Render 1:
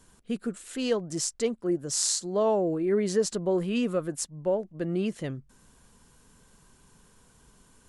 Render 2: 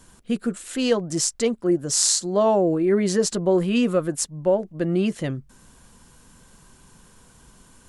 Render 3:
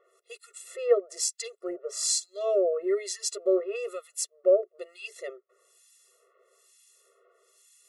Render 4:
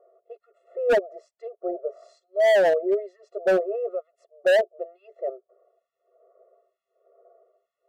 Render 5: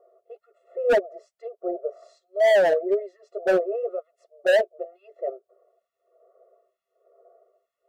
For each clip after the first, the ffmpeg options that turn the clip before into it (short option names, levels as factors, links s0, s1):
-af "bandreject=f=430:w=12,volume=2.24"
-filter_complex "[0:a]acrossover=split=2000[s0][s1];[s0]aeval=exprs='val(0)*(1-1/2+1/2*cos(2*PI*1.1*n/s))':c=same[s2];[s1]aeval=exprs='val(0)*(1-1/2-1/2*cos(2*PI*1.1*n/s))':c=same[s3];[s2][s3]amix=inputs=2:normalize=0,afftfilt=real='re*eq(mod(floor(b*sr/1024/360),2),1)':imag='im*eq(mod(floor(b*sr/1024/360),2),1)':win_size=1024:overlap=0.75"
-af "lowpass=f=690:t=q:w=7,asoftclip=type=hard:threshold=0.168"
-af "flanger=delay=2.3:depth=3.9:regen=-67:speed=2:shape=triangular,volume=1.68"